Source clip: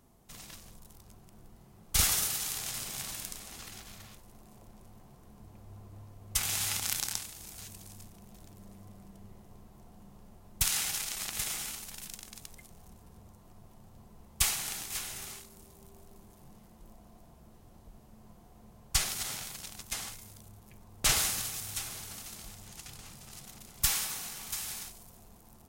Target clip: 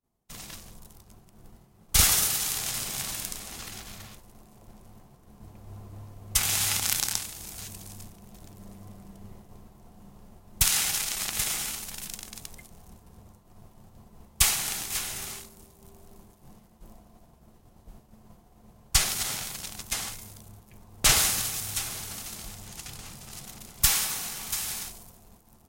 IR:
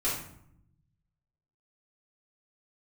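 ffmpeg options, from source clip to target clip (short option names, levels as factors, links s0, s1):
-af "agate=range=0.0224:threshold=0.00355:ratio=3:detection=peak,volume=2"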